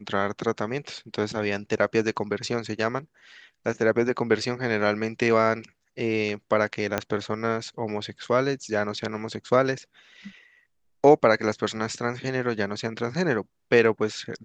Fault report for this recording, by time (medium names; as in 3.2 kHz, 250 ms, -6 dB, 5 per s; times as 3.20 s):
6.98 s: pop -9 dBFS